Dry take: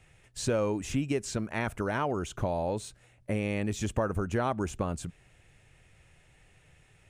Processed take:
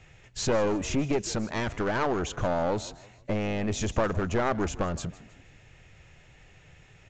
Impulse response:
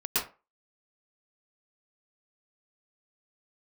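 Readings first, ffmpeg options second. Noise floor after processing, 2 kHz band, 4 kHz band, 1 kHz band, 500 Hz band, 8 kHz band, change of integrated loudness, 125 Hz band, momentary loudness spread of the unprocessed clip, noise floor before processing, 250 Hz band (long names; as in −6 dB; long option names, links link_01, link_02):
−56 dBFS, +3.5 dB, +5.5 dB, +3.5 dB, +3.0 dB, +3.5 dB, +2.5 dB, +1.0 dB, 8 LU, −62 dBFS, +2.5 dB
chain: -filter_complex "[0:a]aeval=exprs='clip(val(0),-1,0.02)':channel_layout=same,asplit=4[link_01][link_02][link_03][link_04];[link_02]adelay=157,afreqshift=48,volume=-19dB[link_05];[link_03]adelay=314,afreqshift=96,volume=-27.2dB[link_06];[link_04]adelay=471,afreqshift=144,volume=-35.4dB[link_07];[link_01][link_05][link_06][link_07]amix=inputs=4:normalize=0,volume=6dB" -ar 16000 -c:a sbc -b:a 192k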